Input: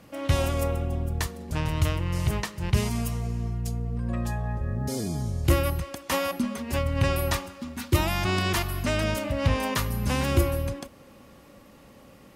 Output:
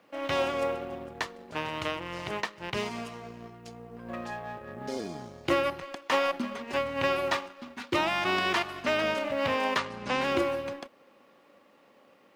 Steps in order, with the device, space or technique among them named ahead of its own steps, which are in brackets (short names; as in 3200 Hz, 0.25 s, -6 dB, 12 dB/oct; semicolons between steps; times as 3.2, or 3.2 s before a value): phone line with mismatched companding (BPF 360–3600 Hz; G.711 law mismatch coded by A); 9.78–10.21 LPF 8700 Hz 24 dB/oct; gain +3 dB